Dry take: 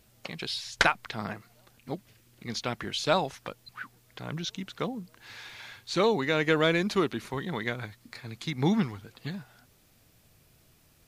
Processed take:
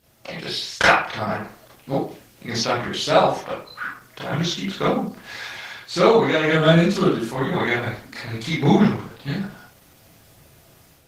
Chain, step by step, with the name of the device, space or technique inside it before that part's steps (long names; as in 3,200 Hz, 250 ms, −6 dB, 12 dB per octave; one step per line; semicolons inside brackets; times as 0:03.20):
0:06.50–0:07.31: thirty-one-band graphic EQ 100 Hz −12 dB, 160 Hz +10 dB, 400 Hz −3 dB, 1,000 Hz −8 dB, 2,000 Hz −10 dB, 8,000 Hz +4 dB
far-field microphone of a smart speaker (convolution reverb RT60 0.45 s, pre-delay 26 ms, DRR −7.5 dB; high-pass filter 95 Hz 6 dB per octave; automatic gain control gain up to 6 dB; Opus 16 kbit/s 48,000 Hz)